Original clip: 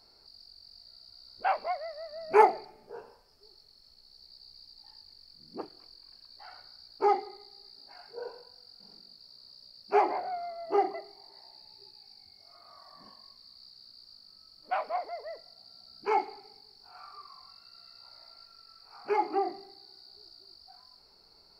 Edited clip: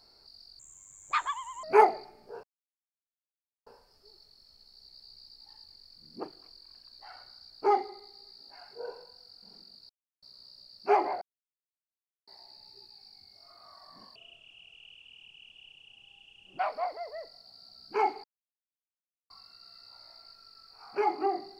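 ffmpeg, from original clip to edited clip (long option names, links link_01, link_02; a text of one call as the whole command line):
ffmpeg -i in.wav -filter_complex "[0:a]asplit=11[link_01][link_02][link_03][link_04][link_05][link_06][link_07][link_08][link_09][link_10][link_11];[link_01]atrim=end=0.594[link_12];[link_02]atrim=start=0.59:end=2.24,asetpts=PTS-STARTPTS,asetrate=69678,aresample=44100[link_13];[link_03]atrim=start=2.236:end=3.04,asetpts=PTS-STARTPTS,afade=type=out:start_time=0.8:duration=0.004:curve=hsin,apad=pad_dur=1.23[link_14];[link_04]atrim=start=3.04:end=9.27,asetpts=PTS-STARTPTS,afade=type=in:duration=0.004:curve=hsin,afade=type=out:start_time=6.226:duration=0.004:curve=hsin,apad=pad_dur=0.33[link_15];[link_05]atrim=start=9.27:end=10.26,asetpts=PTS-STARTPTS,afade=type=in:duration=0.004:curve=hsin,afade=type=out:start_time=0.986:duration=0.004:curve=hsin[link_16];[link_06]atrim=start=10.26:end=11.32,asetpts=PTS-STARTPTS,volume=0[link_17];[link_07]atrim=start=11.32:end=13.204,asetpts=PTS-STARTPTS,afade=type=in:duration=0.004:curve=hsin[link_18];[link_08]atrim=start=13.2:end=14.71,asetpts=PTS-STARTPTS,asetrate=27342,aresample=44100[link_19];[link_09]atrim=start=14.706:end=16.36,asetpts=PTS-STARTPTS,afade=type=out:start_time=1.65:duration=0.004:curve=hsin[link_20];[link_10]atrim=start=16.36:end=17.42,asetpts=PTS-STARTPTS,volume=0[link_21];[link_11]atrim=start=17.42,asetpts=PTS-STARTPTS,afade=type=in:duration=0.004:curve=hsin[link_22];[link_12][link_13]acrossfade=duration=0.004:curve1=hsin:curve2=hsin[link_23];[link_14][link_15][link_16][link_17][link_18]concat=n=5:v=0:a=1[link_24];[link_23][link_24]acrossfade=duration=0.004:curve1=hsin:curve2=hsin[link_25];[link_25][link_19]acrossfade=duration=0.004:curve1=hsin:curve2=hsin[link_26];[link_20][link_21][link_22]concat=n=3:v=0:a=1[link_27];[link_26][link_27]acrossfade=duration=0.004:curve1=hsin:curve2=hsin" out.wav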